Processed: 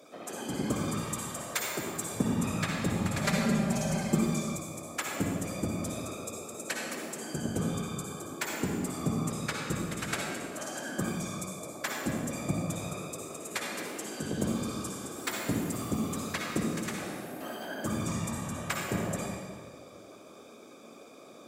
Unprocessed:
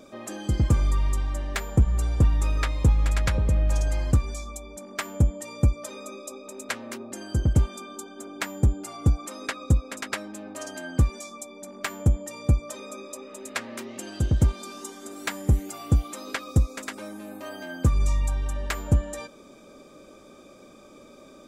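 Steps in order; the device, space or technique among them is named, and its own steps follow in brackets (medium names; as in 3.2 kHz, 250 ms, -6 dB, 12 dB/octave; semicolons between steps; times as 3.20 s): 0.88–2.15 s: tone controls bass -13 dB, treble +5 dB; whispering ghost (whisper effect; high-pass 220 Hz 12 dB/octave; reverberation RT60 1.8 s, pre-delay 50 ms, DRR -1 dB); 3.24–4.56 s: comb 5.1 ms, depth 81%; treble shelf 9.9 kHz +7 dB; trim -4.5 dB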